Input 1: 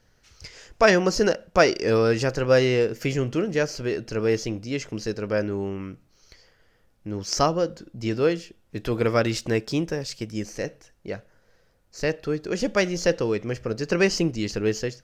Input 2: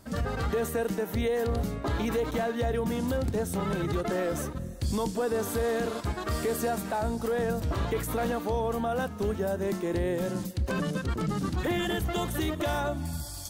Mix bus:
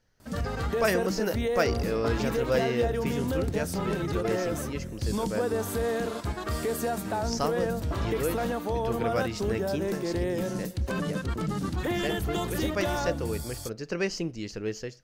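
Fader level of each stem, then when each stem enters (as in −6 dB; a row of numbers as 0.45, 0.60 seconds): −8.5, −0.5 decibels; 0.00, 0.20 seconds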